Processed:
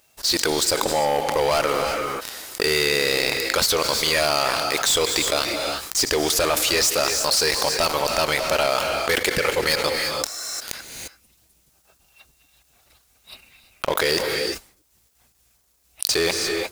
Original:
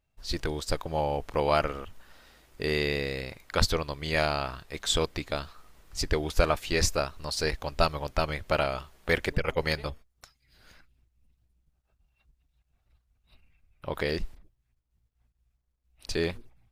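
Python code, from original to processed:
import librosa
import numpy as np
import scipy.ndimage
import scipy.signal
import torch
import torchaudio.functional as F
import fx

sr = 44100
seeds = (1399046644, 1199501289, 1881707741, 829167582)

y = fx.highpass(x, sr, hz=140.0, slope=6)
y = fx.bass_treble(y, sr, bass_db=-11, treble_db=11)
y = fx.leveller(y, sr, passes=5)
y = fx.rev_gated(y, sr, seeds[0], gate_ms=370, shape='rising', drr_db=11.5)
y = fx.env_flatten(y, sr, amount_pct=70)
y = y * 10.0 ** (-11.0 / 20.0)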